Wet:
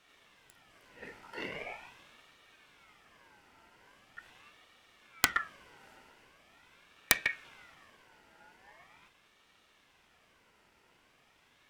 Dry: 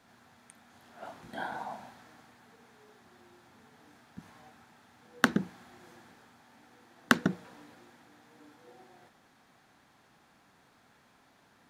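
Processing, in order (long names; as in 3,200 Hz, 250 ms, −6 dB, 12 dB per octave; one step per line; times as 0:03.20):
phase distortion by the signal itself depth 0.84 ms
ring modulator whose carrier an LFO sweeps 1,600 Hz, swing 30%, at 0.42 Hz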